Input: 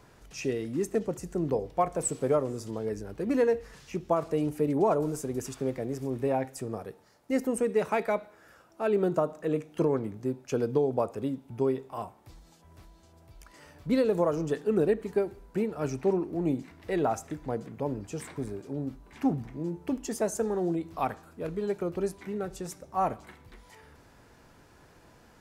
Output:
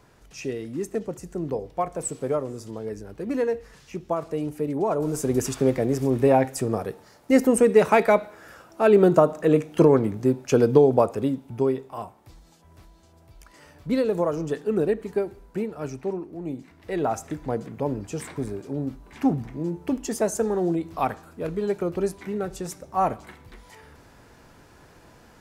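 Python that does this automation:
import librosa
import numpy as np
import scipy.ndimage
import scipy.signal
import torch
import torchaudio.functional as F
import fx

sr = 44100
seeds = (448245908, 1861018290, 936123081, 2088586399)

y = fx.gain(x, sr, db=fx.line((4.89, 0.0), (5.3, 10.0), (10.85, 10.0), (12.01, 2.0), (15.44, 2.0), (16.4, -5.0), (17.3, 5.0)))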